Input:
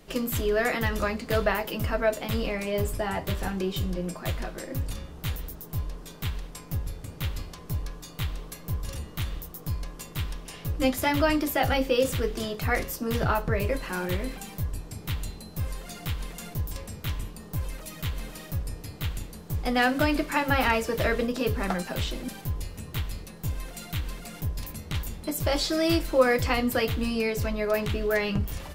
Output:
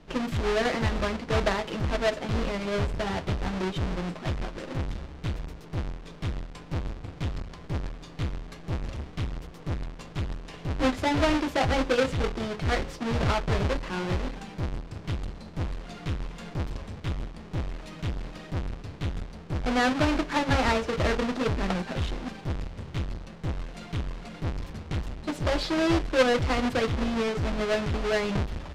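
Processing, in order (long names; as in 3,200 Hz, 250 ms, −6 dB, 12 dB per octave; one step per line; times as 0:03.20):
each half-wave held at its own peak
low-pass filter 4,700 Hz 12 dB per octave
level −4.5 dB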